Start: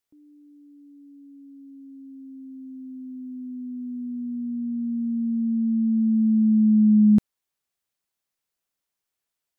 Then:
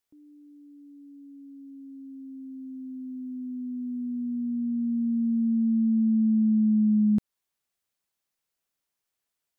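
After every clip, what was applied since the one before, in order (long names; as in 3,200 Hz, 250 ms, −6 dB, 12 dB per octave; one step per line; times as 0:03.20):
downward compressor, threshold −20 dBFS, peak gain reduction 6.5 dB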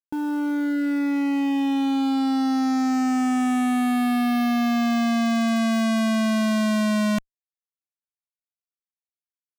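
fuzz pedal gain 53 dB, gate −57 dBFS
level −7.5 dB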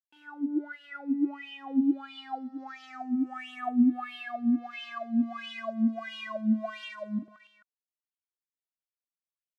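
reverse bouncing-ball delay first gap 40 ms, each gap 1.4×, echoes 5
LFO wah 1.5 Hz 230–3,100 Hz, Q 9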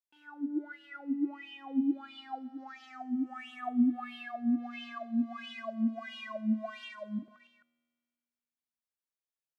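tuned comb filter 80 Hz, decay 1.9 s, harmonics all, mix 40%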